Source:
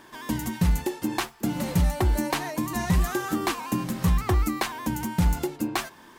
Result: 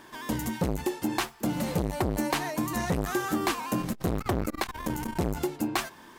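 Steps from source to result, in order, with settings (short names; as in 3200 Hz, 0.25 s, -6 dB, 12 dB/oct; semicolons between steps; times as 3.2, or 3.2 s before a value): 3.79–5.19 added noise brown -40 dBFS; core saturation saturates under 460 Hz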